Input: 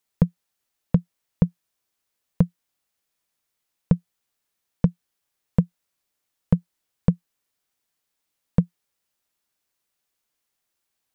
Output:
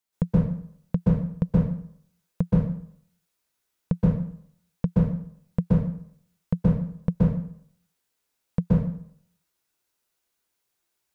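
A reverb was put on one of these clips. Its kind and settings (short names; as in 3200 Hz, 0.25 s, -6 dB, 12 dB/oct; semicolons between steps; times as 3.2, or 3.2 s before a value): plate-style reverb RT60 0.61 s, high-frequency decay 0.8×, pre-delay 0.115 s, DRR -7.5 dB; gain -6.5 dB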